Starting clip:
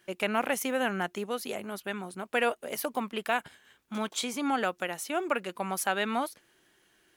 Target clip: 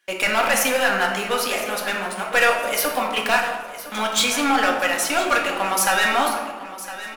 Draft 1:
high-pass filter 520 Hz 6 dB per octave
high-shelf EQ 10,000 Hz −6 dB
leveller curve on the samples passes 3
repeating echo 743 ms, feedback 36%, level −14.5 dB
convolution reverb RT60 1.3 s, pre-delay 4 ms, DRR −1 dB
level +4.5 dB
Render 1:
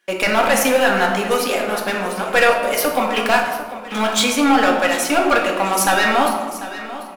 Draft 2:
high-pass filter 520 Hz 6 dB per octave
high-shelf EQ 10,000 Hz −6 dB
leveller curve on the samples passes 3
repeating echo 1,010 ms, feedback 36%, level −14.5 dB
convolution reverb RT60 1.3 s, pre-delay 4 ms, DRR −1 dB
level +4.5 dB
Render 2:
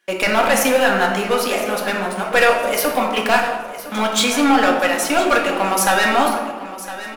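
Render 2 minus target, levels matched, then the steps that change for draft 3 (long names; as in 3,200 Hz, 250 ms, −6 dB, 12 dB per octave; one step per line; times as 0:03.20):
500 Hz band +3.0 dB
change: high-pass filter 1,400 Hz 6 dB per octave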